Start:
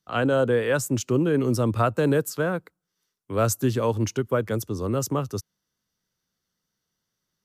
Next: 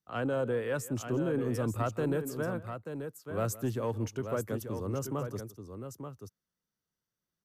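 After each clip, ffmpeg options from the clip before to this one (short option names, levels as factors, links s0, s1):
-af "equalizer=f=4300:t=o:w=2.1:g=-5,asoftclip=type=tanh:threshold=0.251,aecho=1:1:164|884:0.119|0.398,volume=0.376"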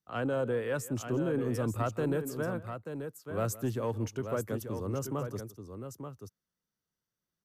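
-af anull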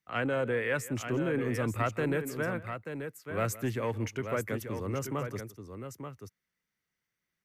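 -af "equalizer=f=2100:t=o:w=0.71:g=15"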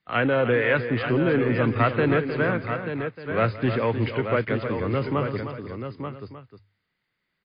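-af "bandreject=f=50:t=h:w=6,bandreject=f=100:t=h:w=6,aecho=1:1:309:0.335,volume=2.82" -ar 11025 -c:a libmp3lame -b:a 24k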